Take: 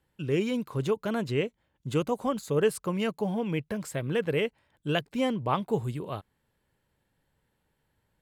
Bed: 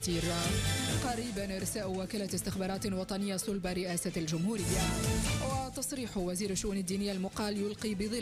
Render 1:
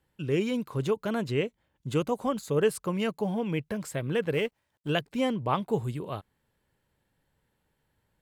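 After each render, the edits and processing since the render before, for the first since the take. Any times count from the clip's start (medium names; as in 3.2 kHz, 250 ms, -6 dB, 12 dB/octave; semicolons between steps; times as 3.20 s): 4.33–4.90 s: companding laws mixed up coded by A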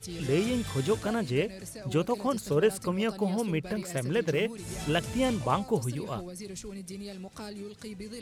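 add bed -6.5 dB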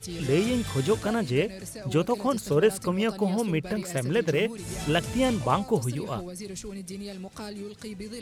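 trim +3 dB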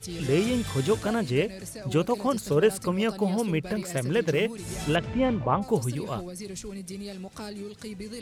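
4.95–5.61 s: low-pass 3 kHz -> 1.5 kHz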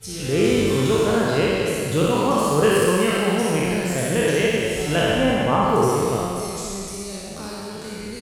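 spectral sustain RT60 2.74 s; loudspeakers at several distances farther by 21 m -4 dB, 87 m -10 dB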